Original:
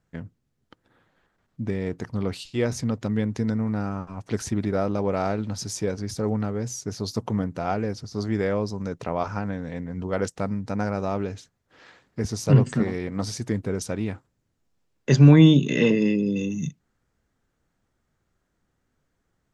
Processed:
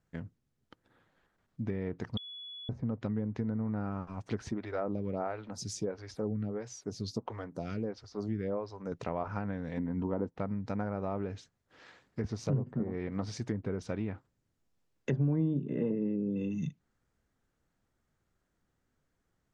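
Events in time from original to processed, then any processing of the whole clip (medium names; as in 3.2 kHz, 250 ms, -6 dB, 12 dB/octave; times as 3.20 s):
2.17–2.69 s: bleep 3.4 kHz -12 dBFS
4.51–8.92 s: lamp-driven phase shifter 1.5 Hz
9.77–10.38 s: small resonant body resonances 260/920 Hz, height 9 dB, ringing for 20 ms
whole clip: low-pass that closes with the level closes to 800 Hz, closed at -19 dBFS; compression 3:1, threshold -25 dBFS; trim -5 dB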